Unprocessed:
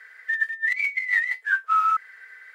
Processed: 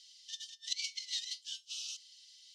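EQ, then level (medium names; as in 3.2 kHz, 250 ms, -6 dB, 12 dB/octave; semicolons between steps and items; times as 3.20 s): rippled Chebyshev high-pass 2.9 kHz, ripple 3 dB; resonant low-pass 5.8 kHz, resonance Q 4.2; +7.5 dB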